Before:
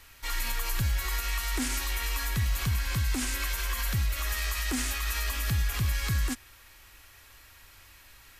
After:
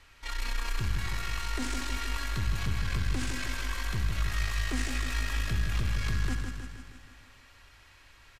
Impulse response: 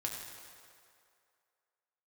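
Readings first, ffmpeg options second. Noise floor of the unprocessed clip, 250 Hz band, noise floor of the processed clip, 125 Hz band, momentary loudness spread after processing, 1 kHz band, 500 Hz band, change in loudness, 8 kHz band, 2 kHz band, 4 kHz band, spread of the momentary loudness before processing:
-54 dBFS, -1.0 dB, -57 dBFS, -2.0 dB, 6 LU, -1.5 dB, 0.0 dB, -3.0 dB, -7.5 dB, -2.0 dB, -3.5 dB, 2 LU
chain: -filter_complex "[0:a]aeval=exprs='(tanh(22.4*val(0)+0.55)-tanh(0.55))/22.4':c=same,adynamicsmooth=sensitivity=3.5:basefreq=6.4k,aecho=1:1:158|316|474|632|790|948|1106|1264:0.501|0.291|0.169|0.0978|0.0567|0.0329|0.0191|0.0111,asplit=2[a][b];[1:a]atrim=start_sample=2205,adelay=68[c];[b][c]afir=irnorm=-1:irlink=0,volume=-11dB[d];[a][d]amix=inputs=2:normalize=0"

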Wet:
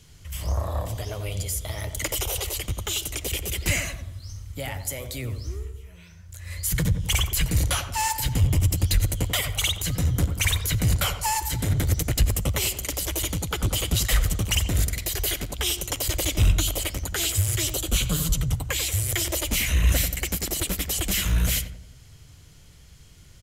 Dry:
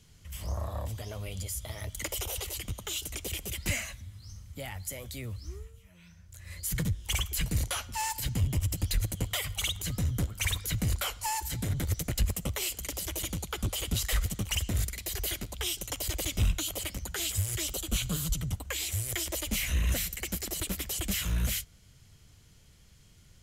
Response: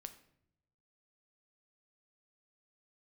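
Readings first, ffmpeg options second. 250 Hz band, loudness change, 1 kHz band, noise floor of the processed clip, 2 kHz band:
+6.0 dB, +7.5 dB, +7.5 dB, -49 dBFS, +7.0 dB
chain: -filter_complex "[0:a]equalizer=f=210:t=o:w=0.2:g=-9,asplit=2[a][b];[b]adelay=90,lowpass=f=1.1k:p=1,volume=-7dB,asplit=2[c][d];[d]adelay=90,lowpass=f=1.1k:p=1,volume=0.54,asplit=2[e][f];[f]adelay=90,lowpass=f=1.1k:p=1,volume=0.54,asplit=2[g][h];[h]adelay=90,lowpass=f=1.1k:p=1,volume=0.54,asplit=2[i][j];[j]adelay=90,lowpass=f=1.1k:p=1,volume=0.54,asplit=2[k][l];[l]adelay=90,lowpass=f=1.1k:p=1,volume=0.54,asplit=2[m][n];[n]adelay=90,lowpass=f=1.1k:p=1,volume=0.54[o];[c][e][g][i][k][m][o]amix=inputs=7:normalize=0[p];[a][p]amix=inputs=2:normalize=0,volume=7dB"

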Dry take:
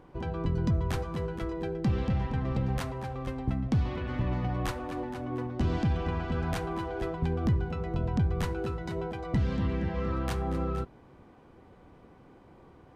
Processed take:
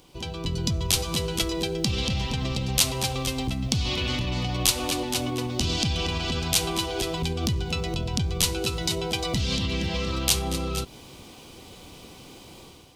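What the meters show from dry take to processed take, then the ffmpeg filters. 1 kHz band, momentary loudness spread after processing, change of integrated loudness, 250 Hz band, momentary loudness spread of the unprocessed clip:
+3.0 dB, 22 LU, +5.5 dB, +2.0 dB, 7 LU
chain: -af "dynaudnorm=f=420:g=3:m=10dB,alimiter=limit=-18dB:level=0:latency=1:release=133,aexciter=amount=11.8:drive=5:freq=2.6k,volume=-2.5dB"

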